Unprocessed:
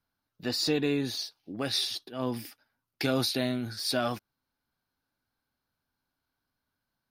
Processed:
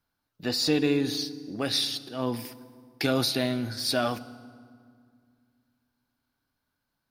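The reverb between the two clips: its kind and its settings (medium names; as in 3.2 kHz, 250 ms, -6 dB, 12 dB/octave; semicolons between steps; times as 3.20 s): FDN reverb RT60 2.1 s, low-frequency decay 1.4×, high-frequency decay 0.65×, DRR 14 dB; trim +2.5 dB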